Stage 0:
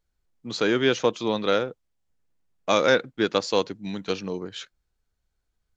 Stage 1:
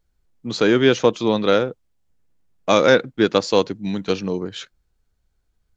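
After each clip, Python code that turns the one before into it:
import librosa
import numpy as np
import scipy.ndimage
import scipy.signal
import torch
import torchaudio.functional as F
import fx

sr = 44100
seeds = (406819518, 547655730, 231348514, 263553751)

y = fx.low_shelf(x, sr, hz=490.0, db=5.0)
y = F.gain(torch.from_numpy(y), 3.5).numpy()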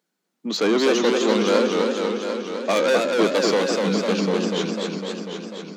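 y = 10.0 ** (-18.0 / 20.0) * np.tanh(x / 10.0 ** (-18.0 / 20.0))
y = scipy.signal.sosfilt(scipy.signal.cheby1(5, 1.0, 180.0, 'highpass', fs=sr, output='sos'), y)
y = fx.echo_warbled(y, sr, ms=249, feedback_pct=74, rate_hz=2.8, cents=165, wet_db=-3.5)
y = F.gain(torch.from_numpy(y), 3.0).numpy()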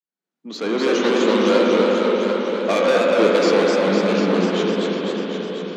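y = fx.fade_in_head(x, sr, length_s=1.08)
y = fx.high_shelf(y, sr, hz=8300.0, db=-9.0)
y = fx.rev_spring(y, sr, rt60_s=3.9, pass_ms=(44, 51, 58), chirp_ms=60, drr_db=-1.0)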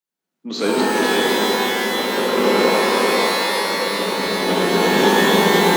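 y = fx.over_compress(x, sr, threshold_db=-22.0, ratio=-0.5)
y = y + 10.0 ** (-4.0 / 20.0) * np.pad(y, (int(498 * sr / 1000.0), 0))[:len(y)]
y = fx.rev_shimmer(y, sr, seeds[0], rt60_s=2.0, semitones=12, shimmer_db=-2, drr_db=-1.0)
y = F.gain(torch.from_numpy(y), -1.0).numpy()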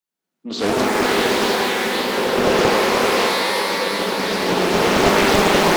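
y = fx.doppler_dist(x, sr, depth_ms=0.86)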